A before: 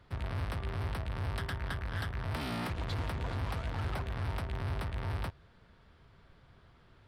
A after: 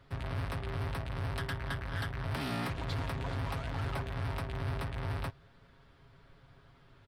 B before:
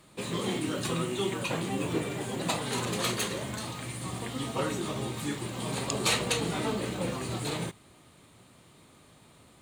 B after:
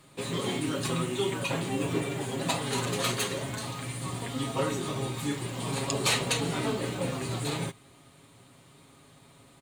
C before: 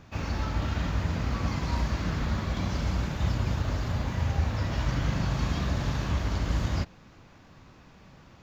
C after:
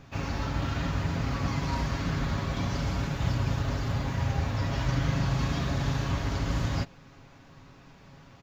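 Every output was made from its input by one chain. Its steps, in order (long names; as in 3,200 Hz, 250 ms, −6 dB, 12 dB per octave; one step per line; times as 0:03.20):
comb filter 7.3 ms, depth 47%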